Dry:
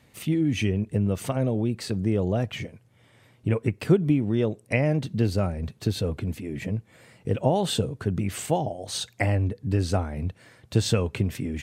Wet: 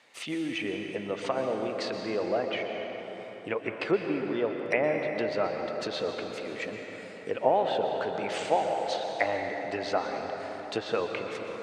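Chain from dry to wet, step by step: fade out at the end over 0.57 s; band-pass 600–6500 Hz; low-pass that closes with the level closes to 1.7 kHz, closed at -30 dBFS; plate-style reverb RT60 4.5 s, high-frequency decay 0.55×, pre-delay 110 ms, DRR 3 dB; trim +3.5 dB

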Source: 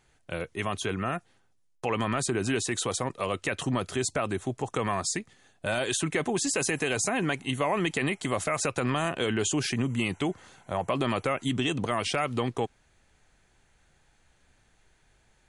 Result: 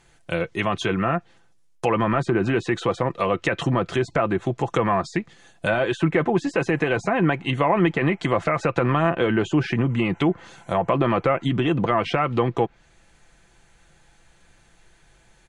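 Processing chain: comb 5.9 ms, depth 40%; low-pass that closes with the level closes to 1.8 kHz, closed at -24.5 dBFS; trim +7.5 dB

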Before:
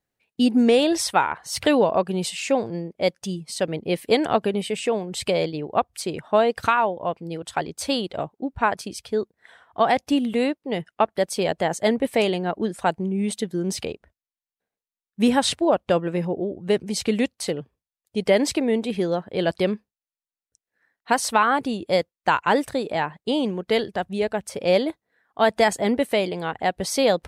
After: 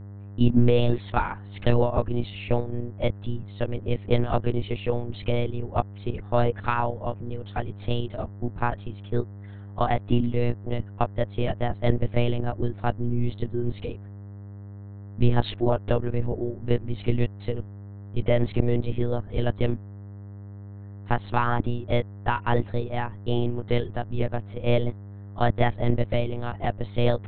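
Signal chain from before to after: monotone LPC vocoder at 8 kHz 120 Hz; mains buzz 100 Hz, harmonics 20, -41 dBFS -8 dB/octave; bass shelf 320 Hz +9.5 dB; trim -7 dB

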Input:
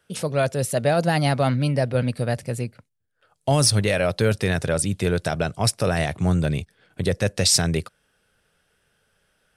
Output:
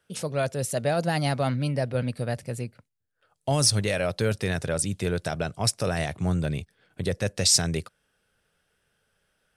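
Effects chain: dynamic bell 6.6 kHz, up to +5 dB, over -39 dBFS, Q 1.3; trim -5 dB

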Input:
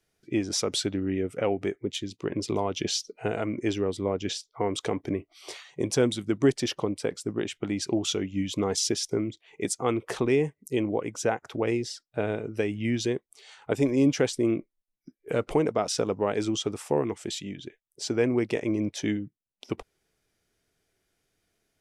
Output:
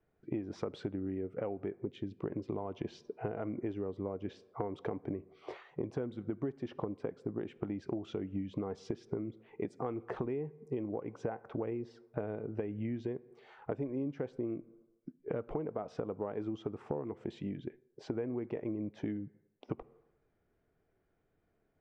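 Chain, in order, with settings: low-pass 1.2 kHz 12 dB/octave; reverberation RT60 0.85 s, pre-delay 3 ms, DRR 19.5 dB; compression 10:1, threshold -35 dBFS, peak gain reduction 18.5 dB; trim +1.5 dB

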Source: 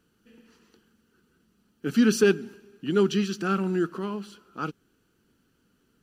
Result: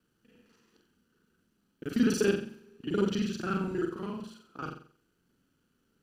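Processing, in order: time reversed locally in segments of 35 ms; on a send: flutter echo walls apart 7.7 m, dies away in 0.46 s; on the sum: trim -6.5 dB

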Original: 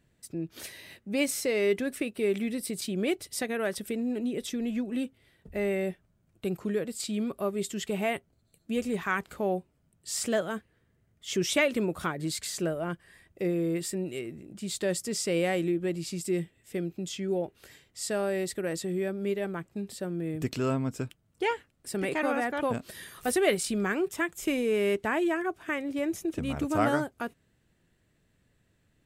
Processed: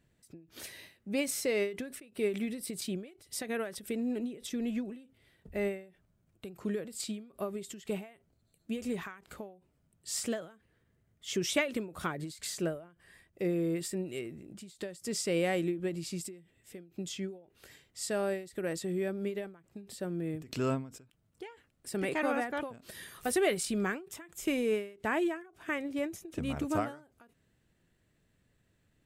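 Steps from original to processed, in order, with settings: endings held to a fixed fall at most 130 dB/s; trim -2.5 dB

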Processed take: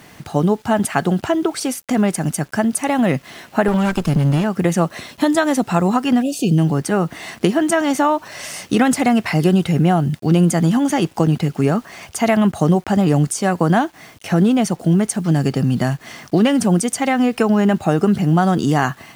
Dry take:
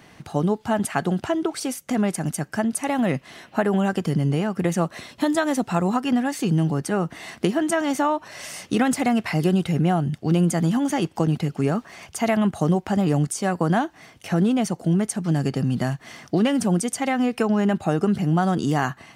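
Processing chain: 3.68–4.44 s: comb filter that takes the minimum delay 0.77 ms; 6.22–6.58 s: spectral selection erased 770–2400 Hz; bit crusher 9-bit; trim +5.5 dB

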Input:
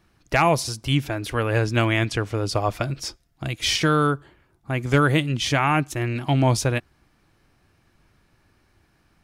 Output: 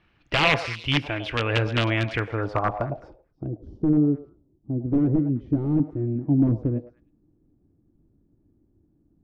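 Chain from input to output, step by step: 1.58–2.14 s: peaking EQ 2.8 kHz -8 dB 1.2 oct; 3.48–4.85 s: Butterworth band-stop 2.2 kHz, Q 0.54; FDN reverb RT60 0.37 s, low-frequency decay 1×, high-frequency decay 0.85×, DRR 17 dB; integer overflow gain 11.5 dB; repeats whose band climbs or falls 105 ms, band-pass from 650 Hz, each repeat 1.4 oct, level -7 dB; low-pass sweep 2.8 kHz -> 300 Hz, 2.05–3.64 s; trim -3 dB

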